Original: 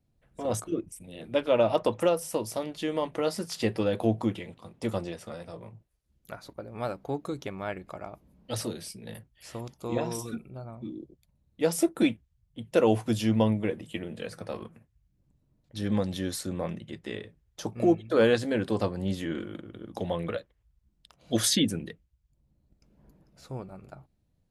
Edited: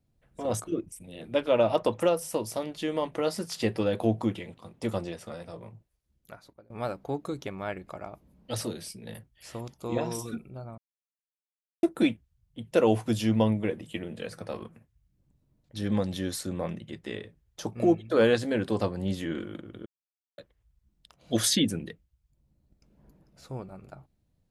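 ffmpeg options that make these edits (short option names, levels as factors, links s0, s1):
-filter_complex "[0:a]asplit=6[s0][s1][s2][s3][s4][s5];[s0]atrim=end=6.7,asetpts=PTS-STARTPTS,afade=t=out:st=5.61:d=1.09:c=qsin:silence=0.0668344[s6];[s1]atrim=start=6.7:end=10.78,asetpts=PTS-STARTPTS,afade=t=in:d=0.004:c=hsin:silence=0.0668344,afade=t=out:st=4.076:d=0.004:c=hsin[s7];[s2]atrim=start=10.78:end=11.83,asetpts=PTS-STARTPTS,volume=0[s8];[s3]atrim=start=11.83:end=19.86,asetpts=PTS-STARTPTS,afade=t=in:d=0.004:c=hsin,afade=t=out:st=8.026:d=0.004:c=hsin[s9];[s4]atrim=start=19.86:end=20.38,asetpts=PTS-STARTPTS,volume=0[s10];[s5]atrim=start=20.38,asetpts=PTS-STARTPTS,afade=t=in:d=0.004:c=hsin[s11];[s6][s7][s8][s9][s10][s11]concat=n=6:v=0:a=1"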